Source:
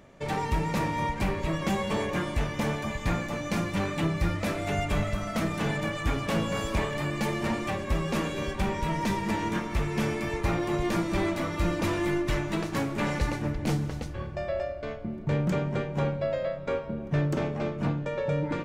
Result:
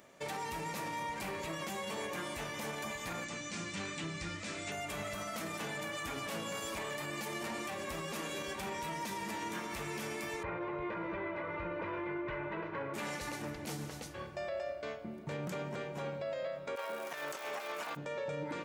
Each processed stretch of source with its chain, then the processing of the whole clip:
3.24–4.72 s: steep low-pass 8.4 kHz 48 dB/octave + peaking EQ 730 Hz -9 dB 1.9 oct
10.43–12.94 s: low-pass 2.2 kHz 24 dB/octave + comb 2 ms, depth 63%
16.75–17.95 s: high-pass 830 Hz + compressor with a negative ratio -42 dBFS, ratio -0.5 + crackle 560 per s -43 dBFS
whole clip: high-pass 430 Hz 6 dB/octave; treble shelf 6.4 kHz +11 dB; peak limiter -28 dBFS; trim -3 dB

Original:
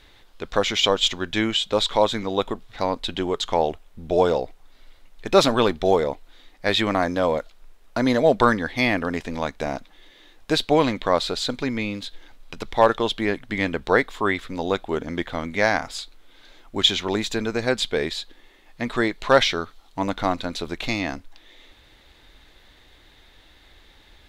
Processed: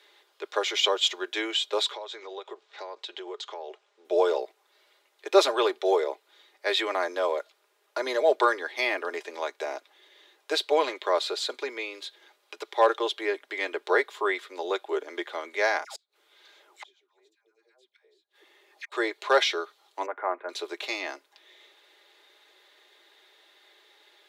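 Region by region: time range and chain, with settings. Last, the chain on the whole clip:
1.92–4.05 s: low-pass 7.2 kHz 24 dB/octave + peaking EQ 280 Hz -10 dB 0.34 oct + compression, threshold -29 dBFS
15.84–18.92 s: phase dispersion lows, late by 138 ms, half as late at 770 Hz + inverted gate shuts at -23 dBFS, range -37 dB
20.06–20.49 s: steep low-pass 2 kHz + band-stop 290 Hz, Q 5
whole clip: steep high-pass 320 Hz 72 dB/octave; band-stop 700 Hz, Q 18; comb 4.9 ms, depth 47%; trim -5 dB

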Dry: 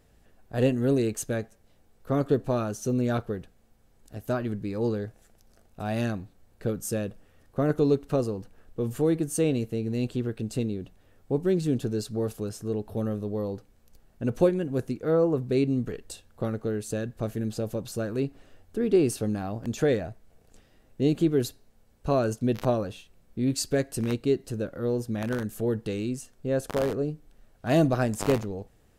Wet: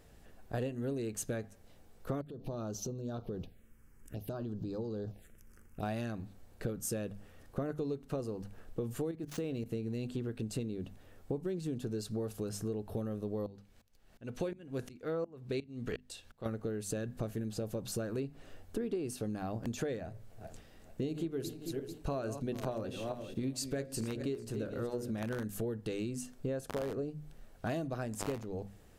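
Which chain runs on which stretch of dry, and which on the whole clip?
2.21–5.83 s: compression 16:1, threshold -35 dBFS + touch-sensitive phaser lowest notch 580 Hz, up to 2.1 kHz, full sweep at -36.5 dBFS
9.11–9.66 s: median filter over 5 samples + level held to a coarse grid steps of 15 dB
13.46–16.46 s: peaking EQ 3.1 kHz +7.5 dB 2.4 oct + sawtooth tremolo in dB swelling 2.8 Hz, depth 25 dB
20.03–25.20 s: backward echo that repeats 221 ms, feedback 43%, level -12.5 dB + hum notches 60/120/180/240/300/360/420/480/540/600 Hz
whole clip: hum notches 50/100/150/200/250 Hz; compression 10:1, threshold -36 dBFS; trim +2.5 dB

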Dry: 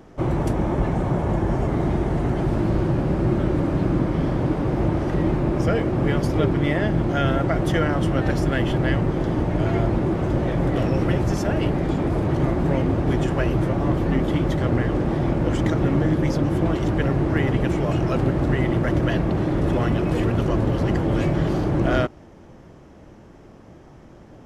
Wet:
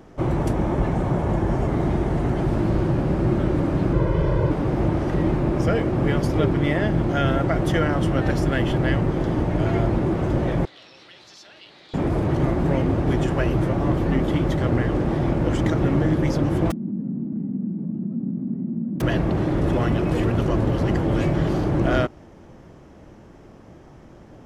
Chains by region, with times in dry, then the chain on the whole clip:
3.93–4.51 s: treble shelf 3.8 kHz -8 dB + comb 2 ms, depth 94%
10.65–11.94 s: band-pass filter 4 kHz, Q 4.7 + level flattener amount 50%
16.70–19.00 s: formants flattened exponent 0.3 + Butterworth band-pass 210 Hz, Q 3.9 + level flattener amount 50%
whole clip: none

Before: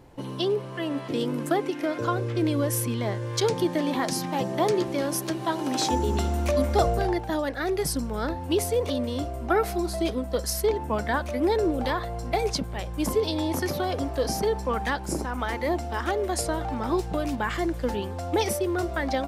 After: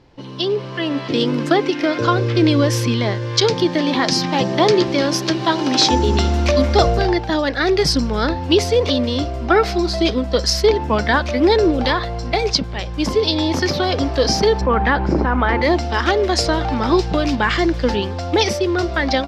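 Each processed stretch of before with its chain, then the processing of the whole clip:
14.61–15.62 s: low-pass 1.8 kHz + level flattener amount 50%
whole clip: FFT filter 410 Hz 0 dB, 700 Hz -2 dB, 5.1 kHz +7 dB, 10 kHz -18 dB; level rider gain up to 11 dB

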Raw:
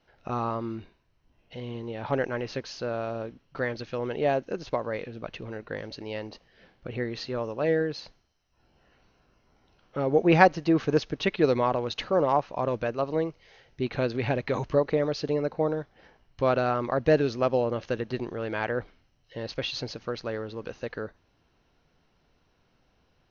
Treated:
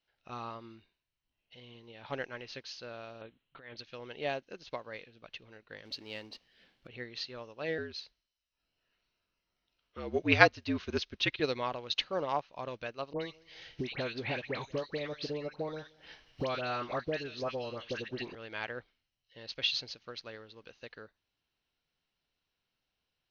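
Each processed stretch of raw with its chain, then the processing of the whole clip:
3.21–3.77 s: steep low-pass 4 kHz 96 dB/octave + compressor with a negative ratio -34 dBFS
5.85–6.87 s: companding laws mixed up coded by mu + peaking EQ 260 Hz +6 dB 0.74 oct
7.78–11.40 s: frequency shift -60 Hz + band-stop 800 Hz, Q 9.6
13.13–18.35 s: phase dispersion highs, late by 86 ms, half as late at 1.5 kHz + filtered feedback delay 176 ms, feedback 25%, level -22 dB + three bands compressed up and down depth 100%
whole clip: peaking EQ 3.6 kHz +14.5 dB 2.2 oct; upward expansion 1.5:1, over -42 dBFS; trim -6.5 dB

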